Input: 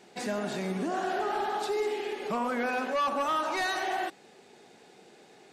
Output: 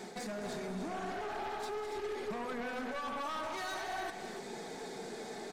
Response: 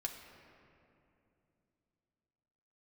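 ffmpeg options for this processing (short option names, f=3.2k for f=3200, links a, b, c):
-filter_complex "[0:a]equalizer=f=2.8k:t=o:w=0.31:g=-12.5,aecho=1:1:4.5:0.35,areverse,acompressor=threshold=-39dB:ratio=6,areverse,alimiter=level_in=15.5dB:limit=-24dB:level=0:latency=1:release=156,volume=-15.5dB,flanger=delay=5.4:depth=4.2:regen=-53:speed=0.46:shape=sinusoidal,aeval=exprs='0.00891*(cos(1*acos(clip(val(0)/0.00891,-1,1)))-cos(1*PI/2))+0.000631*(cos(4*acos(clip(val(0)/0.00891,-1,1)))-cos(4*PI/2))+0.00224*(cos(5*acos(clip(val(0)/0.00891,-1,1)))-cos(5*PI/2))':c=same,asplit=2[a][b];[b]aecho=0:1:212.8|285.7:0.251|0.398[c];[a][c]amix=inputs=2:normalize=0,volume=8dB"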